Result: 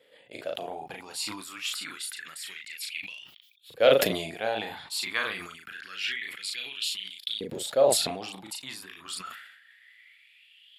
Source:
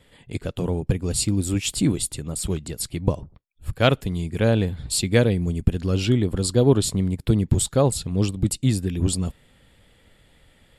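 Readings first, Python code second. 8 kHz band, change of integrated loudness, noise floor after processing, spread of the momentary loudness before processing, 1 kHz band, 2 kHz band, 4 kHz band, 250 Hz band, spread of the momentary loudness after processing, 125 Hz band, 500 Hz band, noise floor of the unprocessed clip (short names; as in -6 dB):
-8.0 dB, -7.0 dB, -59 dBFS, 9 LU, -2.0 dB, +0.5 dB, -0.5 dB, -18.5 dB, 18 LU, -27.0 dB, -3.0 dB, -58 dBFS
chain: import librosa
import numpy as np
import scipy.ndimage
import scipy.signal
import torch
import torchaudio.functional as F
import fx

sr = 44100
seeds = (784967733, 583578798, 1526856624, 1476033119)

y = fx.graphic_eq(x, sr, hz=(500, 1000, 8000), db=(-8, -9, -12))
y = fx.filter_lfo_highpass(y, sr, shape='saw_up', hz=0.27, low_hz=480.0, high_hz=3800.0, q=7.6)
y = fx.doubler(y, sr, ms=37.0, db=-5.5)
y = fx.sustainer(y, sr, db_per_s=55.0)
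y = y * librosa.db_to_amplitude(-3.0)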